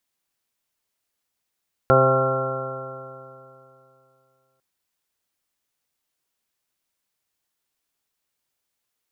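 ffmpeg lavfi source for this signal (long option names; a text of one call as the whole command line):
ffmpeg -f lavfi -i "aevalsrc='0.106*pow(10,-3*t/2.79)*sin(2*PI*131.06*t)+0.0447*pow(10,-3*t/2.79)*sin(2*PI*262.45*t)+0.0891*pow(10,-3*t/2.79)*sin(2*PI*394.5*t)+0.178*pow(10,-3*t/2.79)*sin(2*PI*527.55*t)+0.0841*pow(10,-3*t/2.79)*sin(2*PI*661.92*t)+0.0596*pow(10,-3*t/2.79)*sin(2*PI*797.94*t)+0.0133*pow(10,-3*t/2.79)*sin(2*PI*935.9*t)+0.0596*pow(10,-3*t/2.79)*sin(2*PI*1076.13*t)+0.015*pow(10,-3*t/2.79)*sin(2*PI*1218.91*t)+0.141*pow(10,-3*t/2.79)*sin(2*PI*1364.54*t)':duration=2.7:sample_rate=44100" out.wav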